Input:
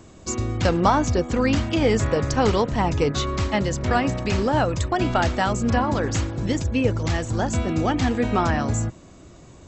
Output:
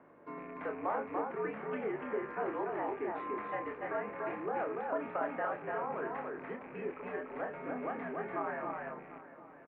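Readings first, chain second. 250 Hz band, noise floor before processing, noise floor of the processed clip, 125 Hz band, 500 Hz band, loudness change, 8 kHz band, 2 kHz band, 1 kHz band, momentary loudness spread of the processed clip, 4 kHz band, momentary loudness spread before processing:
-20.0 dB, -47 dBFS, -55 dBFS, -31.5 dB, -12.5 dB, -16.0 dB, under -40 dB, -13.0 dB, -13.0 dB, 7 LU, under -30 dB, 5 LU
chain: rattling part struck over -23 dBFS, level -25 dBFS; compressor 3:1, threshold -27 dBFS, peak gain reduction 11 dB; doubler 28 ms -5.5 dB; frequency shift +14 Hz; echo 0.29 s -3 dB; hum 50 Hz, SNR 11 dB; echo 0.749 s -16.5 dB; mistuned SSB -85 Hz 410–2100 Hz; gain -7 dB

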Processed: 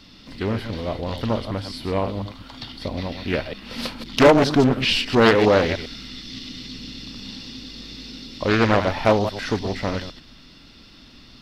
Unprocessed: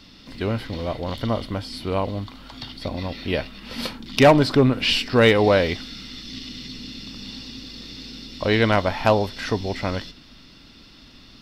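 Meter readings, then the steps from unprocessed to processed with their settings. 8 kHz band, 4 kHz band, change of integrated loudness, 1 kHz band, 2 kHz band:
+1.0 dB, 0.0 dB, +0.5 dB, +1.0 dB, +0.5 dB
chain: reverse delay 0.101 s, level -9 dB; Doppler distortion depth 0.58 ms

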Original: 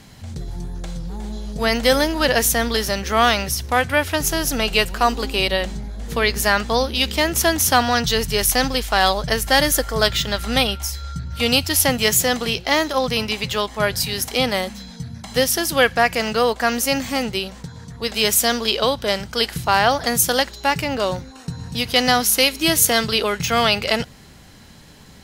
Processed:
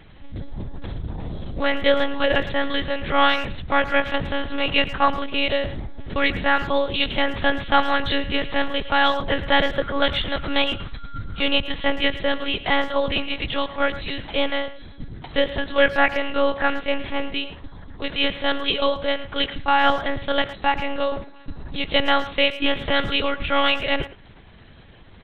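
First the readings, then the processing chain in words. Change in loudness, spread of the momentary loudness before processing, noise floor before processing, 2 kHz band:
-3.5 dB, 14 LU, -44 dBFS, -2.0 dB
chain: added harmonics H 3 -29 dB, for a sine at -2 dBFS; monotone LPC vocoder at 8 kHz 280 Hz; speakerphone echo 0.11 s, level -14 dB

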